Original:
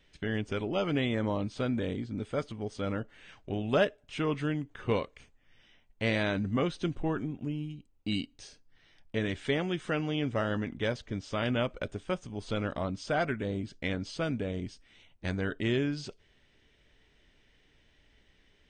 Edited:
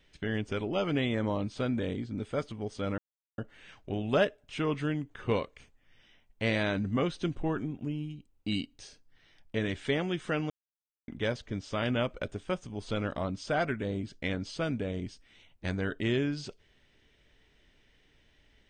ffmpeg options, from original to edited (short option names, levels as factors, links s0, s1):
-filter_complex "[0:a]asplit=4[s0][s1][s2][s3];[s0]atrim=end=2.98,asetpts=PTS-STARTPTS,afade=t=out:st=2.976:d=0.004:c=hsin,apad=pad_dur=0.4[s4];[s1]atrim=start=2.98:end=10.1,asetpts=PTS-STARTPTS,afade=t=in:d=0.004:c=hsin,afade=t=out:st=7.116:d=0.004:c=hsin[s5];[s2]atrim=start=10.1:end=10.68,asetpts=PTS-STARTPTS,volume=0[s6];[s3]atrim=start=10.68,asetpts=PTS-STARTPTS,afade=t=in:d=0.004:c=hsin[s7];[s4][s5][s6][s7]concat=n=4:v=0:a=1"